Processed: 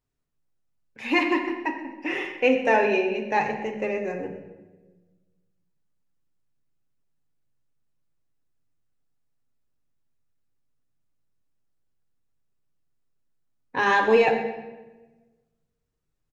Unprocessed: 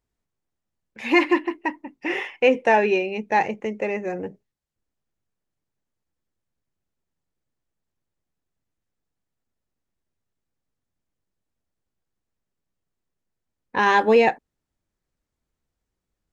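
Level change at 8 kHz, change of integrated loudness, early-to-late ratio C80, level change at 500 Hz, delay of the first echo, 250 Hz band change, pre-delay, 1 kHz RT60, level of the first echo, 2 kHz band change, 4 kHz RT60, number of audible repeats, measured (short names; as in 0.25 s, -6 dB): n/a, -2.5 dB, 8.5 dB, -2.0 dB, 0.126 s, -2.5 dB, 7 ms, 1.0 s, -15.5 dB, -1.5 dB, 0.80 s, 1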